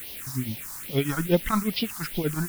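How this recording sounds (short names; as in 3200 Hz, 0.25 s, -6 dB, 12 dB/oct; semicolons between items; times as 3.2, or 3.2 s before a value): tremolo triangle 8.4 Hz, depth 90%; a quantiser's noise floor 8-bit, dither triangular; phasing stages 4, 2.4 Hz, lowest notch 460–1400 Hz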